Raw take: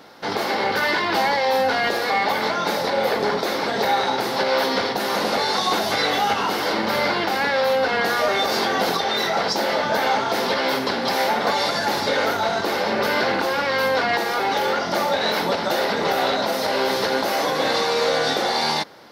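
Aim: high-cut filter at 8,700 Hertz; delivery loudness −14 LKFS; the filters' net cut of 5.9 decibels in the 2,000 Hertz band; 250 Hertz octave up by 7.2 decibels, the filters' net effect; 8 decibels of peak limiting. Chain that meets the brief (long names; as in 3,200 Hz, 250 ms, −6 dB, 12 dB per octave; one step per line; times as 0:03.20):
low-pass filter 8,700 Hz
parametric band 250 Hz +9 dB
parametric band 2,000 Hz −8 dB
level +9.5 dB
brickwall limiter −5.5 dBFS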